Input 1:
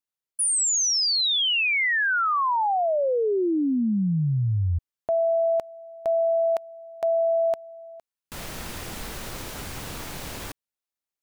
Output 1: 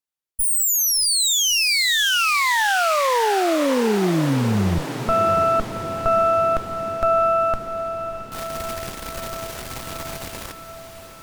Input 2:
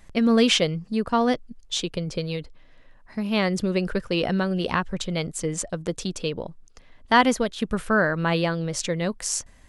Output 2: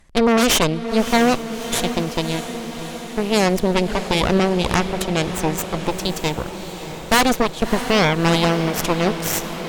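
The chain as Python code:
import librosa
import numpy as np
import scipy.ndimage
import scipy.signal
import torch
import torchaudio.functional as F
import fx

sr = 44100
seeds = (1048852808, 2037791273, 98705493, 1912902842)

y = fx.cheby_harmonics(x, sr, harmonics=(8,), levels_db=(-8,), full_scale_db=-6.5)
y = fx.echo_diffused(y, sr, ms=637, feedback_pct=69, wet_db=-11.0)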